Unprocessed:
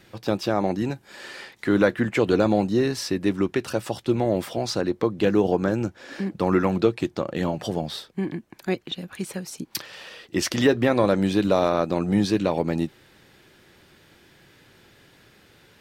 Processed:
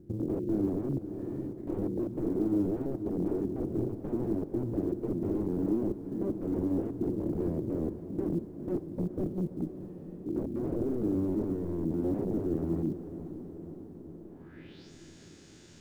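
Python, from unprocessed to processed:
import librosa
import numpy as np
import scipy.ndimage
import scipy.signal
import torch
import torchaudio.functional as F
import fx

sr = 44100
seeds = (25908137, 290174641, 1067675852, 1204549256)

p1 = fx.spec_steps(x, sr, hold_ms=100)
p2 = fx.transient(p1, sr, attack_db=7, sustain_db=-2)
p3 = fx.bass_treble(p2, sr, bass_db=9, treble_db=7)
p4 = fx.rider(p3, sr, range_db=3, speed_s=0.5)
p5 = fx.env_lowpass_down(p4, sr, base_hz=460.0, full_db=-18.5)
p6 = (np.mod(10.0 ** (19.0 / 20.0) * p5 + 1.0, 2.0) - 1.0) / 10.0 ** (19.0 / 20.0)
p7 = fx.filter_sweep_lowpass(p6, sr, from_hz=340.0, to_hz=6800.0, start_s=14.13, end_s=14.92, q=3.4)
p8 = fx.quant_companded(p7, sr, bits=8)
p9 = p8 + fx.echo_diffused(p8, sr, ms=493, feedback_pct=68, wet_db=-12, dry=0)
p10 = fx.band_squash(p9, sr, depth_pct=70, at=(0.67, 1.53))
y = F.gain(torch.from_numpy(p10), -8.0).numpy()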